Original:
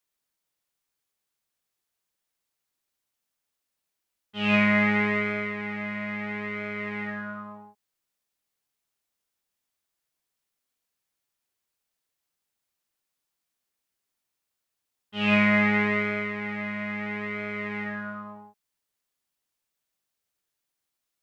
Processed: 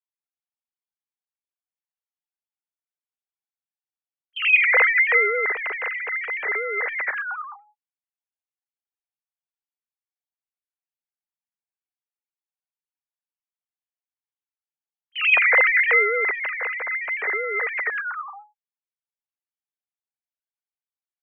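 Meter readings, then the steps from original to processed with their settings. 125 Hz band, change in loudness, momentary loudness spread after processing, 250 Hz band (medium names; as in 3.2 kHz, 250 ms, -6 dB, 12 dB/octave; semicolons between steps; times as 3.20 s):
under -40 dB, +6.5 dB, 16 LU, under -25 dB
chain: formants replaced by sine waves; gate with hold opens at -36 dBFS; trim +5 dB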